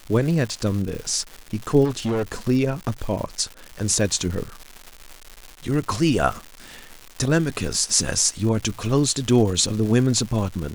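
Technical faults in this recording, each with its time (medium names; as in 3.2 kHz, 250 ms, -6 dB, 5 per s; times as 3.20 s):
crackle 290 per s -29 dBFS
1.84–2.23 s: clipped -20 dBFS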